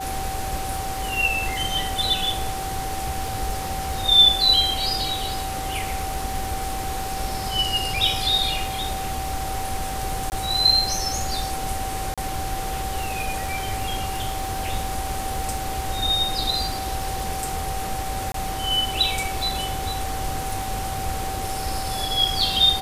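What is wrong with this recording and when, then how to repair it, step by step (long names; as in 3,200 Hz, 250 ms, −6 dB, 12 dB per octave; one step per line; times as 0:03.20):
surface crackle 36 per second −30 dBFS
whistle 770 Hz −29 dBFS
0:10.30–0:10.32: drop-out 19 ms
0:12.14–0:12.18: drop-out 36 ms
0:18.32–0:18.34: drop-out 23 ms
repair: click removal
notch filter 770 Hz, Q 30
repair the gap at 0:10.30, 19 ms
repair the gap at 0:12.14, 36 ms
repair the gap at 0:18.32, 23 ms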